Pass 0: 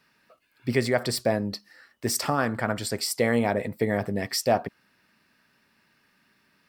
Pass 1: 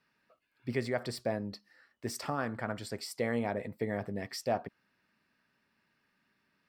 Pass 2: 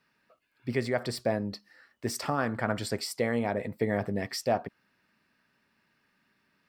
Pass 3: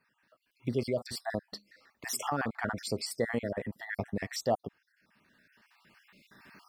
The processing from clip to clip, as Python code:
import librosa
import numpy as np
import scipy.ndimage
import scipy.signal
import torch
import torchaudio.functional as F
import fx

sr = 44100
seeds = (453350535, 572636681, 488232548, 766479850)

y1 = fx.high_shelf(x, sr, hz=5600.0, db=-8.5)
y1 = y1 * 10.0 ** (-9.0 / 20.0)
y2 = fx.rider(y1, sr, range_db=10, speed_s=0.5)
y2 = y2 * 10.0 ** (5.5 / 20.0)
y3 = fx.spec_dropout(y2, sr, seeds[0], share_pct=45)
y3 = fx.recorder_agc(y3, sr, target_db=-21.5, rise_db_per_s=9.4, max_gain_db=30)
y3 = y3 * 10.0 ** (-1.5 / 20.0)